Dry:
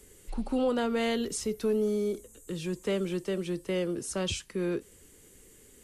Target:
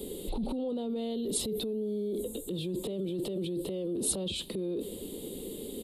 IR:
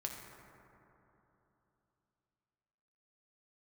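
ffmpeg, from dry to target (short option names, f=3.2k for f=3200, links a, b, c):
-af "firequalizer=gain_entry='entry(110,0);entry(200,14);entry(520,12);entry(1600,-14);entry(3700,14);entry(6000,-14);entry(8700,-16)':delay=0.05:min_phase=1,alimiter=level_in=11.5dB:limit=-24dB:level=0:latency=1:release=11,volume=-11.5dB,aexciter=amount=6.1:drive=8.5:freq=7.9k,volume=8dB"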